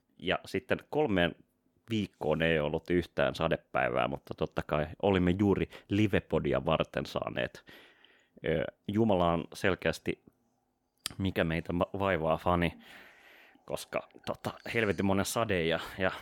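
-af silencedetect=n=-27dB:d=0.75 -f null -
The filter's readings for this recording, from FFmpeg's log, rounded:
silence_start: 7.46
silence_end: 8.44 | silence_duration: 0.99
silence_start: 10.11
silence_end: 11.06 | silence_duration: 0.95
silence_start: 12.68
silence_end: 13.70 | silence_duration: 1.02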